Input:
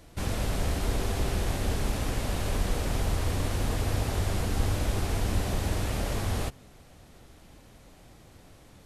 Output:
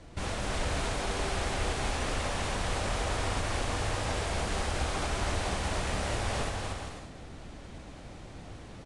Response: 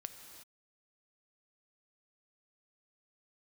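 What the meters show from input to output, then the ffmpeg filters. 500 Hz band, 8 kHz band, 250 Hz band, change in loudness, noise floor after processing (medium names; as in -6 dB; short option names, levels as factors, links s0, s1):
0.0 dB, 0.0 dB, -4.0 dB, -2.0 dB, -47 dBFS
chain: -filter_complex "[0:a]highshelf=f=5400:g=-10,acrossover=split=540|7000[s0][s1][s2];[s0]acompressor=threshold=0.0112:ratio=6[s3];[s1]alimiter=level_in=3.16:limit=0.0631:level=0:latency=1:release=185,volume=0.316[s4];[s3][s4][s2]amix=inputs=3:normalize=0,dynaudnorm=f=110:g=3:m=1.41,aecho=1:1:240|396|497.4|563.3|606.2:0.631|0.398|0.251|0.158|0.1,asplit=2[s5][s6];[1:a]atrim=start_sample=2205[s7];[s6][s7]afir=irnorm=-1:irlink=0,volume=0.531[s8];[s5][s8]amix=inputs=2:normalize=0" -ar 22050 -c:a libvorbis -b:a 48k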